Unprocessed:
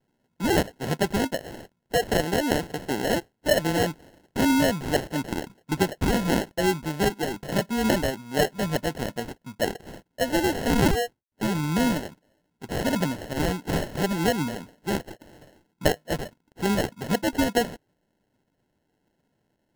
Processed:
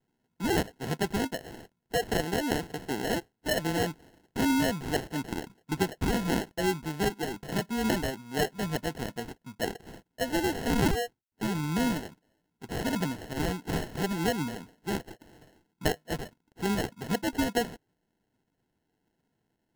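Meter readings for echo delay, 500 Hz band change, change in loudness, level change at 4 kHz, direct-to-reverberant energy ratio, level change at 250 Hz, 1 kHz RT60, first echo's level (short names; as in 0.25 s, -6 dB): none, -6.0 dB, -5.0 dB, -4.5 dB, none, -4.5 dB, none, none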